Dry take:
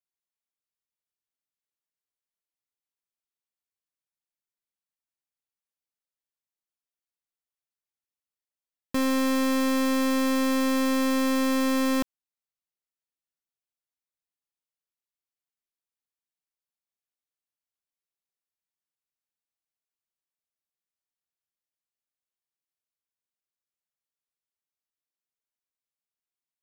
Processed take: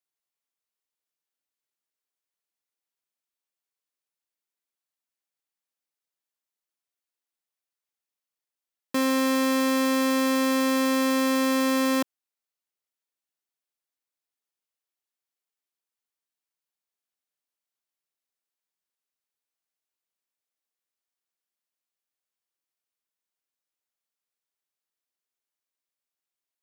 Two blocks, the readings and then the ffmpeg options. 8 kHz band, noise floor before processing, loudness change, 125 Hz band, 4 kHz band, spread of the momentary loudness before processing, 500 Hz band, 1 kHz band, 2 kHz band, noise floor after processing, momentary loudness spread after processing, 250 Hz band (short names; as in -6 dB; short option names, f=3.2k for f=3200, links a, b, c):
+2.5 dB, under -85 dBFS, +1.0 dB, n/a, +2.5 dB, 3 LU, +2.5 dB, +2.5 dB, +2.5 dB, under -85 dBFS, 3 LU, 0.0 dB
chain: -af "highpass=240,volume=2.5dB"